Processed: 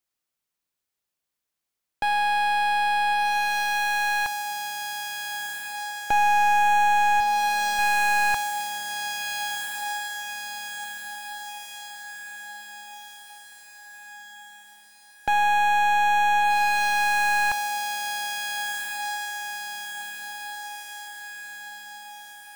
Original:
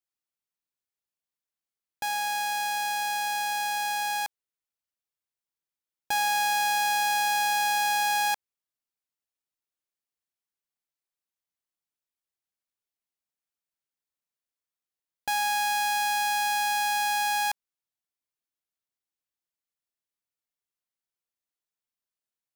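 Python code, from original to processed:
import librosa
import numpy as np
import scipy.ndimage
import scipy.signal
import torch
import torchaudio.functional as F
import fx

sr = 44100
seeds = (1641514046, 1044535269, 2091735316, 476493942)

y = fx.median_filter(x, sr, points=25, at=(7.2, 7.79))
y = fx.echo_diffused(y, sr, ms=1437, feedback_pct=55, wet_db=-8.5)
y = fx.slew_limit(y, sr, full_power_hz=110.0)
y = y * 10.0 ** (7.5 / 20.0)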